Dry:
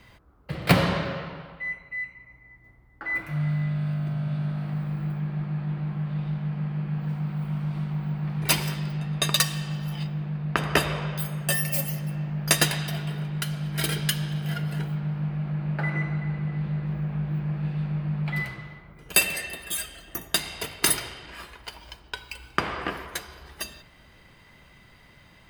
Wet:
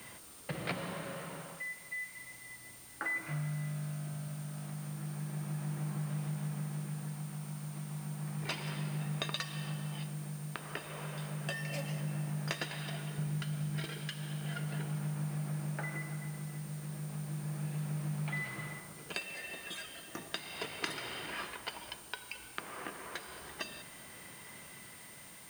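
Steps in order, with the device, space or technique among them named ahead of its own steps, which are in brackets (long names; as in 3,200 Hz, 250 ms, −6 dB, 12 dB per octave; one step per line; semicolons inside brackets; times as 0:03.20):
medium wave at night (band-pass filter 150–4,200 Hz; downward compressor 6 to 1, threshold −37 dBFS, peak gain reduction 20.5 dB; amplitude tremolo 0.33 Hz, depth 47%; steady tone 9,000 Hz −58 dBFS; white noise bed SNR 16 dB)
0:13.18–0:13.85: low-shelf EQ 200 Hz +10 dB
level +2.5 dB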